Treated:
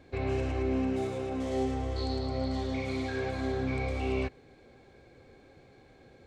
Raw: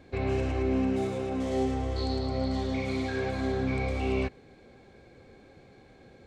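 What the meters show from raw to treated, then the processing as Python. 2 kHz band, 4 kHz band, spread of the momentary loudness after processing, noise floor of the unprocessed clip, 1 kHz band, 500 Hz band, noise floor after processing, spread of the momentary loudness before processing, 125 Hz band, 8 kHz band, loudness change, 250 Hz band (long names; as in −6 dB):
−2.0 dB, −2.0 dB, 3 LU, −55 dBFS, −2.0 dB, −2.0 dB, −58 dBFS, 3 LU, −2.0 dB, −2.0 dB, −2.5 dB, −3.0 dB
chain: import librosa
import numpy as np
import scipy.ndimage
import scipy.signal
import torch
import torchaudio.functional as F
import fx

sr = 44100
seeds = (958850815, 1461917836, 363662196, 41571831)

y = fx.peak_eq(x, sr, hz=200.0, db=-6.5, octaves=0.25)
y = y * 10.0 ** (-2.0 / 20.0)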